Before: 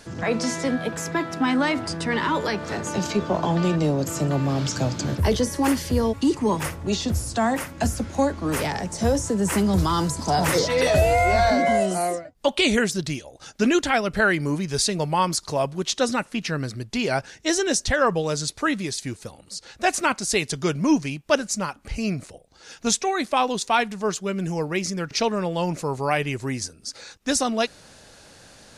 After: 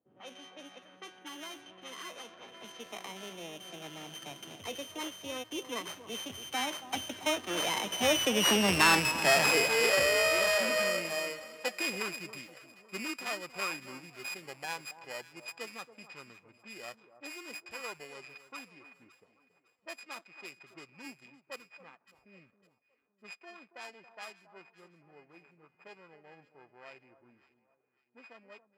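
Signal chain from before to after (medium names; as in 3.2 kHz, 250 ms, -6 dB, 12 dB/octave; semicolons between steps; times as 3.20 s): sorted samples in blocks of 16 samples; Doppler pass-by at 8.72 s, 39 m/s, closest 20 m; level-controlled noise filter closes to 370 Hz, open at -43 dBFS; echo whose repeats swap between lows and highs 278 ms, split 1.2 kHz, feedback 57%, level -13 dB; in parallel at -6.5 dB: hard clipper -28 dBFS, distortion -5 dB; on the sum: frequency weighting A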